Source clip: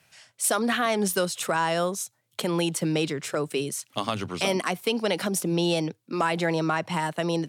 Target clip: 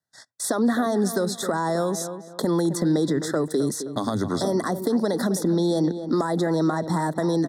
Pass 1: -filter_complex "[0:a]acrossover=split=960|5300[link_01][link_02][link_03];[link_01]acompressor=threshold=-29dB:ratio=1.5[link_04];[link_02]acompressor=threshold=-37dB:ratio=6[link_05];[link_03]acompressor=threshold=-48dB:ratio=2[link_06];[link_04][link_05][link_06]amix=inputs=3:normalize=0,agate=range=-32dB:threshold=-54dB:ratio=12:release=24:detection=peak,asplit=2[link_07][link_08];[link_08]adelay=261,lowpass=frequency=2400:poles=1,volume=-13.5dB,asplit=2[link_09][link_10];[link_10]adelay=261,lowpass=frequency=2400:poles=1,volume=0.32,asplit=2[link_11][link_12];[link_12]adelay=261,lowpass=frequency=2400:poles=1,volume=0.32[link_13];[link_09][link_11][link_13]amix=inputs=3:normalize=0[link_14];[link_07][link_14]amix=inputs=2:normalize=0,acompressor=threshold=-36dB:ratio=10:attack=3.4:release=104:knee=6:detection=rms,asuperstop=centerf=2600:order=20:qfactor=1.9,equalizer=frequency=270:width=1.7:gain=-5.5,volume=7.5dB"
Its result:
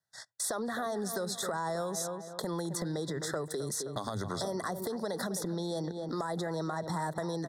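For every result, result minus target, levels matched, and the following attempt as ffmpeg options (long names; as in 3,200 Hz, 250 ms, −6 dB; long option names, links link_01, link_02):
downward compressor: peak gain reduction +8.5 dB; 250 Hz band −4.0 dB
-filter_complex "[0:a]acrossover=split=960|5300[link_01][link_02][link_03];[link_01]acompressor=threshold=-29dB:ratio=1.5[link_04];[link_02]acompressor=threshold=-37dB:ratio=6[link_05];[link_03]acompressor=threshold=-48dB:ratio=2[link_06];[link_04][link_05][link_06]amix=inputs=3:normalize=0,agate=range=-32dB:threshold=-54dB:ratio=12:release=24:detection=peak,asplit=2[link_07][link_08];[link_08]adelay=261,lowpass=frequency=2400:poles=1,volume=-13.5dB,asplit=2[link_09][link_10];[link_10]adelay=261,lowpass=frequency=2400:poles=1,volume=0.32,asplit=2[link_11][link_12];[link_12]adelay=261,lowpass=frequency=2400:poles=1,volume=0.32[link_13];[link_09][link_11][link_13]amix=inputs=3:normalize=0[link_14];[link_07][link_14]amix=inputs=2:normalize=0,acompressor=threshold=-26.5dB:ratio=10:attack=3.4:release=104:knee=6:detection=rms,asuperstop=centerf=2600:order=20:qfactor=1.9,equalizer=frequency=270:width=1.7:gain=-5.5,volume=7.5dB"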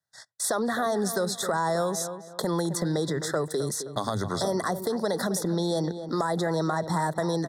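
250 Hz band −3.5 dB
-filter_complex "[0:a]acrossover=split=960|5300[link_01][link_02][link_03];[link_01]acompressor=threshold=-29dB:ratio=1.5[link_04];[link_02]acompressor=threshold=-37dB:ratio=6[link_05];[link_03]acompressor=threshold=-48dB:ratio=2[link_06];[link_04][link_05][link_06]amix=inputs=3:normalize=0,agate=range=-32dB:threshold=-54dB:ratio=12:release=24:detection=peak,asplit=2[link_07][link_08];[link_08]adelay=261,lowpass=frequency=2400:poles=1,volume=-13.5dB,asplit=2[link_09][link_10];[link_10]adelay=261,lowpass=frequency=2400:poles=1,volume=0.32,asplit=2[link_11][link_12];[link_12]adelay=261,lowpass=frequency=2400:poles=1,volume=0.32[link_13];[link_09][link_11][link_13]amix=inputs=3:normalize=0[link_14];[link_07][link_14]amix=inputs=2:normalize=0,acompressor=threshold=-26.5dB:ratio=10:attack=3.4:release=104:knee=6:detection=rms,asuperstop=centerf=2600:order=20:qfactor=1.9,equalizer=frequency=270:width=1.7:gain=6.5,volume=7.5dB"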